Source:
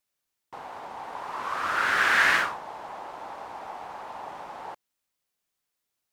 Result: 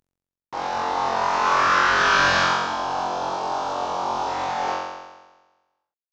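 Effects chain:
variable-slope delta modulation 32 kbit/s
0:01.90–0:04.27: parametric band 2,000 Hz −14 dB 0.45 octaves
downward compressor, threshold −30 dBFS, peak gain reduction 8.5 dB
flutter between parallel walls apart 3.8 metres, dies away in 1.2 s
level +8.5 dB

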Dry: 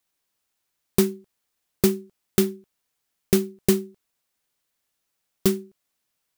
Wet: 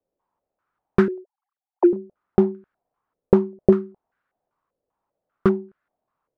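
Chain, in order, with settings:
0:01.08–0:01.93: three sine waves on the formant tracks
low-pass on a step sequencer 5.1 Hz 520–1,500 Hz
level +2.5 dB

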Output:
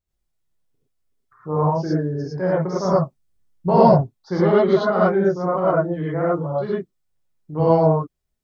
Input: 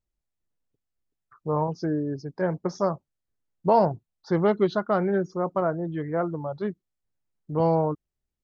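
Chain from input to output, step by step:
0:02.85–0:03.93: bass and treble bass +7 dB, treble +2 dB
reverb whose tail is shaped and stops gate 130 ms rising, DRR −7.5 dB
level −2 dB

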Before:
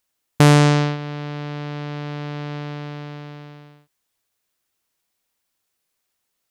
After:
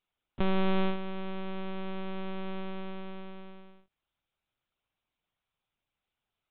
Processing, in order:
notch filter 1,800 Hz, Q 6.1
brickwall limiter −13.5 dBFS, peak gain reduction 10 dB
one-pitch LPC vocoder at 8 kHz 190 Hz
level −5 dB

